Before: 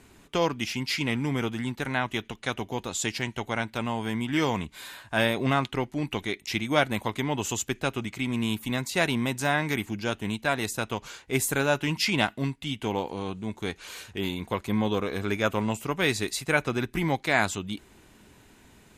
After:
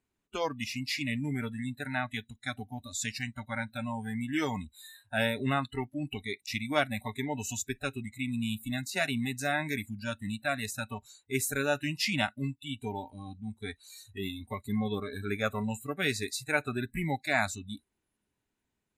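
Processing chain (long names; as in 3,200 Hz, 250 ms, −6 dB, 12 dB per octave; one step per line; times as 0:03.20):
noise reduction from a noise print of the clip's start 25 dB
level −4 dB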